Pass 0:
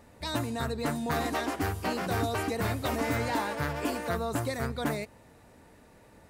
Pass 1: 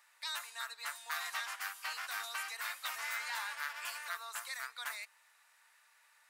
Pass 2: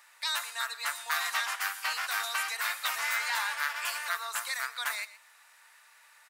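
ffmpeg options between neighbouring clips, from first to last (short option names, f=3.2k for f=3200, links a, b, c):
-af "highpass=f=1.2k:w=0.5412,highpass=f=1.2k:w=1.3066,volume=-2.5dB"
-af "aecho=1:1:120:0.15,volume=8.5dB"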